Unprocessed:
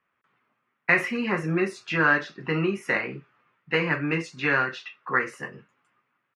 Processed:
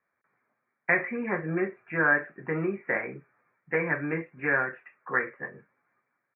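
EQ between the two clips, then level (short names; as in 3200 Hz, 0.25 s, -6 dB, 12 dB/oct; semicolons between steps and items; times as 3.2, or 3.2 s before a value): rippled Chebyshev low-pass 2400 Hz, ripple 6 dB; 0.0 dB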